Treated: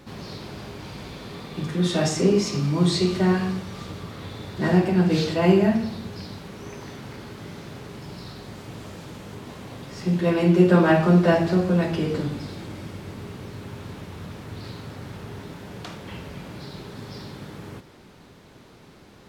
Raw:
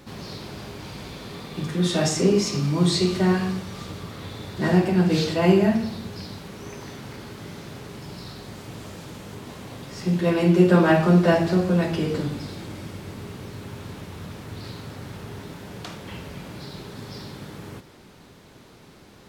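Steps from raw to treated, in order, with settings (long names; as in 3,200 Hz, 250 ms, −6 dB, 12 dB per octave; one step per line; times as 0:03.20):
high-shelf EQ 5,200 Hz −4.5 dB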